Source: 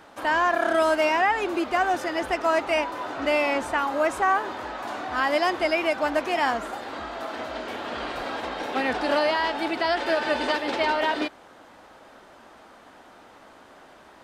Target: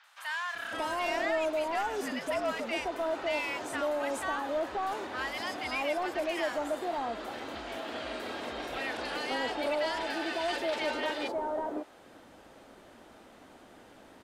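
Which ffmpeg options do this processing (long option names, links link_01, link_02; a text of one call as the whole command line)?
ffmpeg -i in.wav -filter_complex "[0:a]asplit=3[link_01][link_02][link_03];[link_01]afade=type=out:start_time=1.45:duration=0.02[link_04];[link_02]afreqshift=-84,afade=type=in:start_time=1.45:duration=0.02,afade=type=out:start_time=2.15:duration=0.02[link_05];[link_03]afade=type=in:start_time=2.15:duration=0.02[link_06];[link_04][link_05][link_06]amix=inputs=3:normalize=0,acrossover=split=360[link_07][link_08];[link_07]acompressor=threshold=-45dB:ratio=6[link_09];[link_08]equalizer=frequency=1200:width_type=o:width=2.9:gain=-5.5[link_10];[link_09][link_10]amix=inputs=2:normalize=0,asoftclip=type=tanh:threshold=-23dB,acrossover=split=1100|5200[link_11][link_12][link_13];[link_13]adelay=40[link_14];[link_11]adelay=550[link_15];[link_15][link_12][link_14]amix=inputs=3:normalize=0" out.wav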